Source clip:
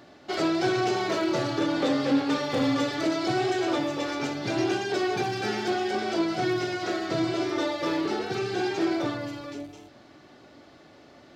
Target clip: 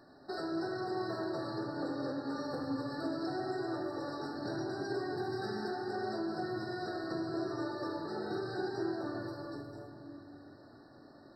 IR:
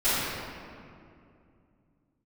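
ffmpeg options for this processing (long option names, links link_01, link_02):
-filter_complex "[0:a]acompressor=threshold=-29dB:ratio=6,asplit=2[link_01][link_02];[1:a]atrim=start_sample=2205,lowshelf=frequency=320:gain=2[link_03];[link_02][link_03]afir=irnorm=-1:irlink=0,volume=-16.5dB[link_04];[link_01][link_04]amix=inputs=2:normalize=0,afftfilt=real='re*eq(mod(floor(b*sr/1024/1900),2),0)':imag='im*eq(mod(floor(b*sr/1024/1900),2),0)':win_size=1024:overlap=0.75,volume=-8.5dB"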